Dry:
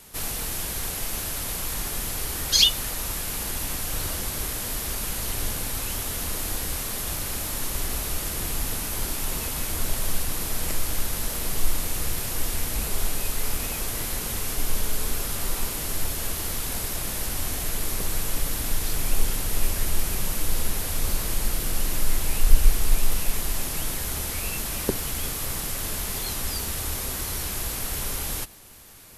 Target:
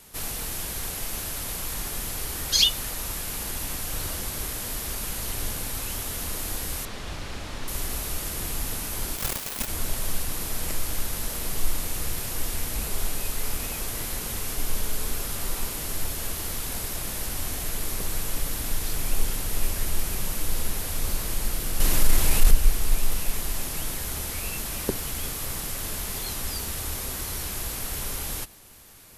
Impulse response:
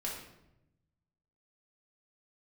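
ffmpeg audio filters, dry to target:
-filter_complex "[0:a]asettb=1/sr,asplit=3[a][b][c];[a]atrim=end=6.854[d];[b]atrim=start=6.85:end=7.68,asetpts=PTS-STARTPTS,afade=t=in:d=0.004:c=qsin,afade=t=out:st=0.826:d=0.004:c=qsin,lowpass=4.3k[e];[c]atrim=start=7.676[f];[d][e]acrossfade=d=0.004:c1=hsin:c2=qsin[g];[g][f]acrossfade=d=0.004:c1=qsin:c2=hsin,asplit=3[h][i][j];[h]afade=t=out:st=9.16:d=0.02[k];[i]aeval=exprs='0.188*(cos(1*acos(clip(val(0)/0.188,-1,1)))-cos(1*PI/2))+0.0596*(cos(7*acos(clip(val(0)/0.188,-1,1)))-cos(7*PI/2))':c=same,afade=t=in:st=9.16:d=0.02,afade=t=out:st=9.66:d=0.02[l];[j]afade=t=in:st=9.66:d=0.02[m];[k][l][m]amix=inputs=3:normalize=0,asettb=1/sr,asplit=3[n][o][p];[n]atrim=end=21.804[q];[o]atrim=start=21.8:end=22.51,asetpts=PTS-STARTPTS,afade=t=in:d=0.004:c=qsin,afade=t=out:st=0.706:d=0.004:c=qsin,acontrast=78[r];[p]atrim=start=22.506[s];[q][r]acrossfade=d=0.004:c1=hsin:c2=qsin[t];[t][s]acrossfade=d=0.004:c1=qsin:c2=hsin,volume=-2dB"

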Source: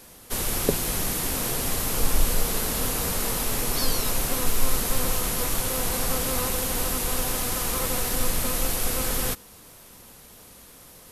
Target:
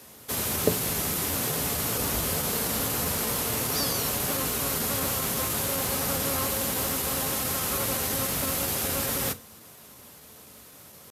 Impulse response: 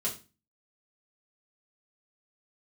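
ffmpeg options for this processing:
-filter_complex "[0:a]highpass=f=64:w=0.5412,highpass=f=64:w=1.3066,asetrate=46722,aresample=44100,atempo=0.943874,asplit=2[a][b];[1:a]atrim=start_sample=2205[c];[b][c]afir=irnorm=-1:irlink=0,volume=-13dB[d];[a][d]amix=inputs=2:normalize=0,volume=-2dB"

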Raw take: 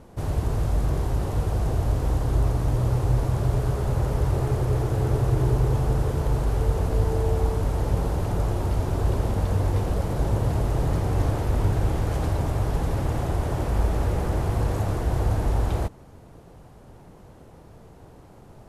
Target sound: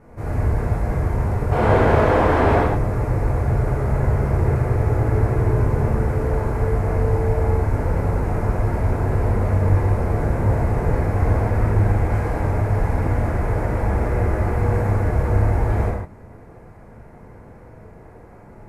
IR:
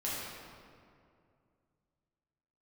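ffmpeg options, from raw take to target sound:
-filter_complex "[0:a]highshelf=f=2.6k:t=q:w=3:g=-7,asplit=3[a][b][c];[a]afade=t=out:st=1.51:d=0.02[d];[b]asplit=2[e][f];[f]highpass=f=720:p=1,volume=29dB,asoftclip=type=tanh:threshold=-11dB[g];[e][g]amix=inputs=2:normalize=0,lowpass=f=1.3k:p=1,volume=-6dB,afade=t=in:st=1.51:d=0.02,afade=t=out:st=2.58:d=0.02[h];[c]afade=t=in:st=2.58:d=0.02[i];[d][h][i]amix=inputs=3:normalize=0[j];[1:a]atrim=start_sample=2205,afade=t=out:st=0.2:d=0.01,atrim=end_sample=9261,asetrate=34839,aresample=44100[k];[j][k]afir=irnorm=-1:irlink=0,volume=-1dB"

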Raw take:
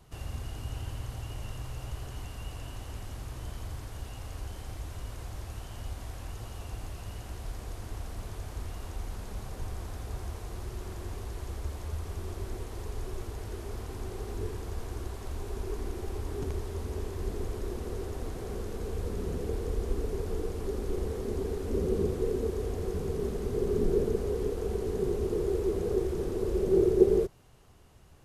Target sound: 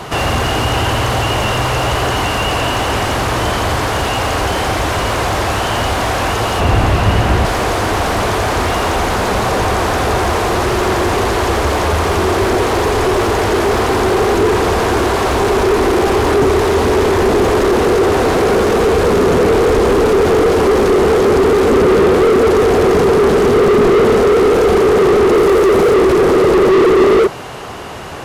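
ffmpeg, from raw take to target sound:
-filter_complex "[0:a]asettb=1/sr,asplit=3[a][b][c];[a]atrim=end=25.354[d];[b]atrim=start=25.35:end=25.94,asetpts=PTS-STARTPTS,afade=t=in:d=0.004:c=qsin,afade=t=out:st=0.586:d=0.004:c=qsin,highshelf=f=12k:g=9.5[e];[c]atrim=start=25.936[f];[d][e]acrossfade=d=0.004:c1=hsin:c2=qsin[g];[g][f]acrossfade=d=0.004:c1=qsin:c2=hsin,asplit=2[h][i];[i]highpass=f=720:p=1,volume=41dB,asoftclip=type=tanh:threshold=-8dB[j];[h][j]amix=inputs=2:normalize=0,lowpass=f=1.8k:p=1,volume=-6dB,asettb=1/sr,asplit=3[k][l][m];[k]atrim=end=6.604[n];[l]atrim=start=6.6:end=7.45,asetpts=PTS-STARTPTS,afade=t=in:d=0.004:c=qsin,afade=t=out:st=0.846:d=0.004:c=qsin,bass=f=250:g=9,treble=f=4k:g=-5[o];[m]atrim=start=7.446[p];[n][o]acrossfade=d=0.004:c1=hsin:c2=qsin[q];[q][p]acrossfade=d=0.004:c1=qsin:c2=hsin,volume=5.5dB"

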